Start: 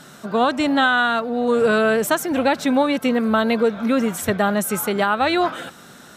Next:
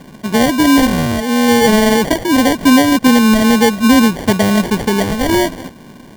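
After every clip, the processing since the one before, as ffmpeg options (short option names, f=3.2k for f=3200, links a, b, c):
-af "equalizer=f=250:t=o:w=1:g=6,equalizer=f=1k:t=o:w=1:g=-11,equalizer=f=8k:t=o:w=1:g=-4,acrusher=samples=34:mix=1:aa=0.000001,volume=6dB"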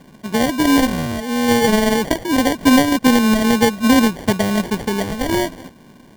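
-af "aeval=exprs='0.891*(cos(1*acos(clip(val(0)/0.891,-1,1)))-cos(1*PI/2))+0.158*(cos(3*acos(clip(val(0)/0.891,-1,1)))-cos(3*PI/2))':c=same,volume=-1dB"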